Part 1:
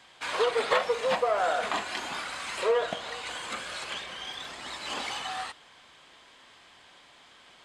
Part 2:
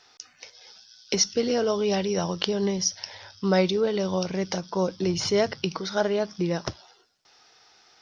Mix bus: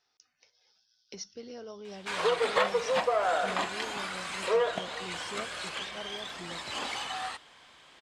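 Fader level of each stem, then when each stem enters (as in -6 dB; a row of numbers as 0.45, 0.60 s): -1.0, -19.5 dB; 1.85, 0.00 s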